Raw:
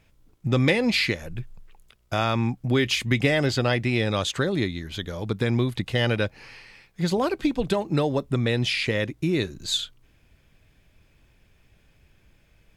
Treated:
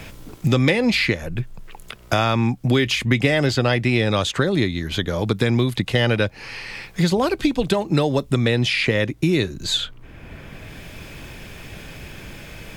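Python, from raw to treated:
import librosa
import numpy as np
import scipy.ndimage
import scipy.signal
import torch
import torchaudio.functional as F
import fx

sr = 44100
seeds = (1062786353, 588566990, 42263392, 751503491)

y = fx.band_squash(x, sr, depth_pct=70)
y = F.gain(torch.from_numpy(y), 4.5).numpy()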